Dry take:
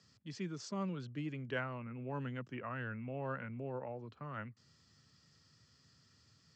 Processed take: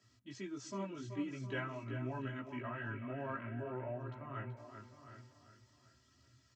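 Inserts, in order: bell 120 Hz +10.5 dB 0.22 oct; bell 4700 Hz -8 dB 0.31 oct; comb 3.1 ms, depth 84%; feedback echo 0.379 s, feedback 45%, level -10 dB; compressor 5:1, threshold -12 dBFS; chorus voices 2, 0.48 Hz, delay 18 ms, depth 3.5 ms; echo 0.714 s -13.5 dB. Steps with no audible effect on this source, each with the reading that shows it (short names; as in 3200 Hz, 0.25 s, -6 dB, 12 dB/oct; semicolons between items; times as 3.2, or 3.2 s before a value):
compressor, threshold -12 dBFS: input peak -23.5 dBFS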